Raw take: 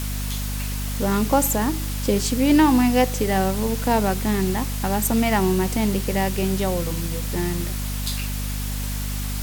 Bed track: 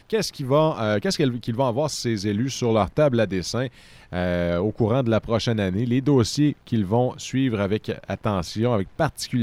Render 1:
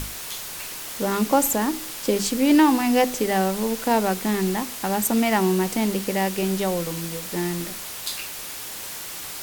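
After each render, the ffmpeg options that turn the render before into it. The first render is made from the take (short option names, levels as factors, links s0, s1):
-af "bandreject=f=50:t=h:w=6,bandreject=f=100:t=h:w=6,bandreject=f=150:t=h:w=6,bandreject=f=200:t=h:w=6,bandreject=f=250:t=h:w=6"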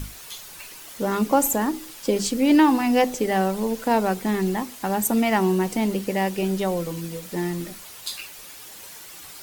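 -af "afftdn=nr=9:nf=-35"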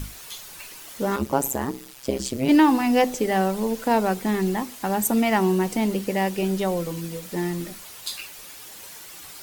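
-filter_complex "[0:a]asettb=1/sr,asplit=3[s0][s1][s2];[s0]atrim=end=1.164[s3];[s1]atrim=start=1.16:end=2.49,asetpts=PTS-STARTPTS,afade=t=in:d=0.004:c=qsin,afade=t=out:st=1.326:d=0.004:c=qsin,tremolo=f=130:d=1[s4];[s2]atrim=start=2.486[s5];[s3][s4]acrossfade=d=0.004:c1=hsin:c2=qsin[s6];[s6][s5]acrossfade=d=0.004:c1=qsin:c2=hsin"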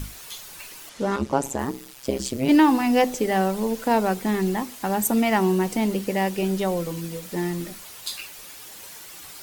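-filter_complex "[0:a]asettb=1/sr,asplit=3[s0][s1][s2];[s0]atrim=end=0.894[s3];[s1]atrim=start=0.89:end=1.59,asetpts=PTS-STARTPTS,afade=t=in:d=0.004:c=qsin,afade=t=out:st=0.696:d=0.004:c=qsin,lowpass=7100[s4];[s2]atrim=start=1.586[s5];[s3][s4]acrossfade=d=0.004:c1=hsin:c2=qsin[s6];[s6][s5]acrossfade=d=0.004:c1=qsin:c2=hsin"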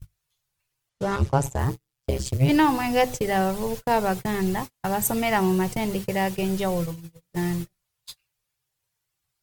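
-af "agate=range=0.0112:threshold=0.0398:ratio=16:detection=peak,lowshelf=f=170:t=q:w=3:g=9.5"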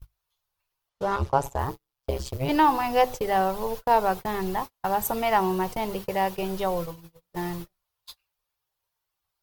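-af "equalizer=f=125:t=o:w=1:g=-11,equalizer=f=250:t=o:w=1:g=-5,equalizer=f=1000:t=o:w=1:g=5,equalizer=f=2000:t=o:w=1:g=-5,equalizer=f=8000:t=o:w=1:g=-9"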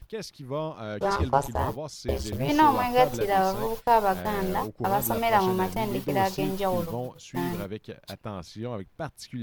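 -filter_complex "[1:a]volume=0.237[s0];[0:a][s0]amix=inputs=2:normalize=0"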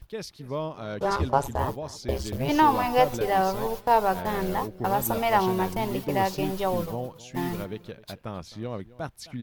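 -filter_complex "[0:a]asplit=2[s0][s1];[s1]adelay=262.4,volume=0.112,highshelf=f=4000:g=-5.9[s2];[s0][s2]amix=inputs=2:normalize=0"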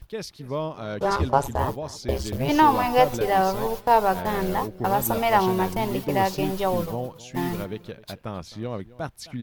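-af "volume=1.33"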